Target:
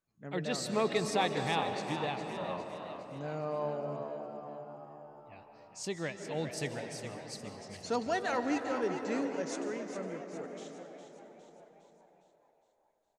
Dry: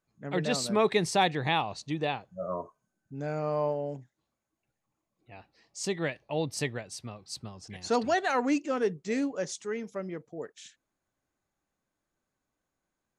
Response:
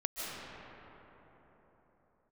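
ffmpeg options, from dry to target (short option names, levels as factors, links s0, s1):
-filter_complex "[0:a]asplit=7[s0][s1][s2][s3][s4][s5][s6];[s1]adelay=409,afreqshift=72,volume=0.335[s7];[s2]adelay=818,afreqshift=144,volume=0.178[s8];[s3]adelay=1227,afreqshift=216,volume=0.0944[s9];[s4]adelay=1636,afreqshift=288,volume=0.0501[s10];[s5]adelay=2045,afreqshift=360,volume=0.0263[s11];[s6]adelay=2454,afreqshift=432,volume=0.014[s12];[s0][s7][s8][s9][s10][s11][s12]amix=inputs=7:normalize=0,asplit=2[s13][s14];[1:a]atrim=start_sample=2205[s15];[s14][s15]afir=irnorm=-1:irlink=0,volume=0.422[s16];[s13][s16]amix=inputs=2:normalize=0,volume=0.376"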